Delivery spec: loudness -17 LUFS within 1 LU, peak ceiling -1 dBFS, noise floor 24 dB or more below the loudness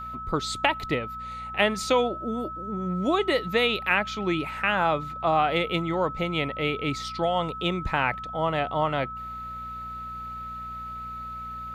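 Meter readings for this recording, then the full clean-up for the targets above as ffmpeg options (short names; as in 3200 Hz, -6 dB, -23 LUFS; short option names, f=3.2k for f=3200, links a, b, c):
hum 60 Hz; harmonics up to 240 Hz; hum level -43 dBFS; steady tone 1300 Hz; tone level -34 dBFS; loudness -27.0 LUFS; peak -6.0 dBFS; loudness target -17.0 LUFS
-> -af "bandreject=f=60:t=h:w=4,bandreject=f=120:t=h:w=4,bandreject=f=180:t=h:w=4,bandreject=f=240:t=h:w=4"
-af "bandreject=f=1.3k:w=30"
-af "volume=10dB,alimiter=limit=-1dB:level=0:latency=1"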